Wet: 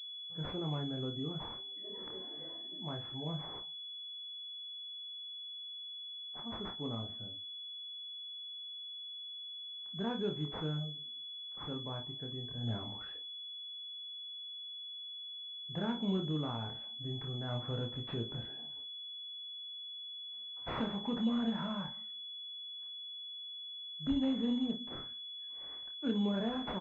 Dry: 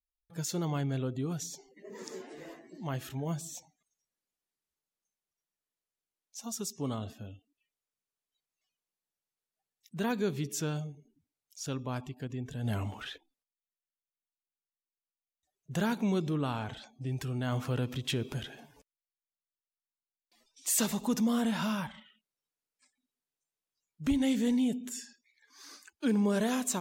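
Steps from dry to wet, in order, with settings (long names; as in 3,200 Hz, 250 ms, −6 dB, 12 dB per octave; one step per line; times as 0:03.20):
ambience of single reflections 26 ms −4.5 dB, 54 ms −11 dB
switching amplifier with a slow clock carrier 3,400 Hz
level −6.5 dB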